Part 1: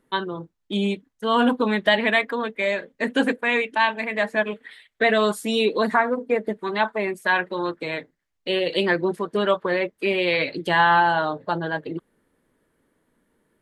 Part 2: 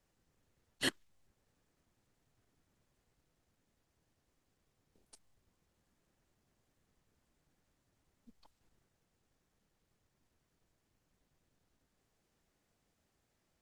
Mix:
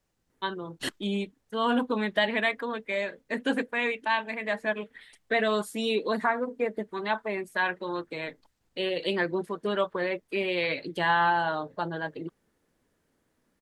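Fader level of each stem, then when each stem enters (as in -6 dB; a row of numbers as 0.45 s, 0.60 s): -6.5 dB, +1.0 dB; 0.30 s, 0.00 s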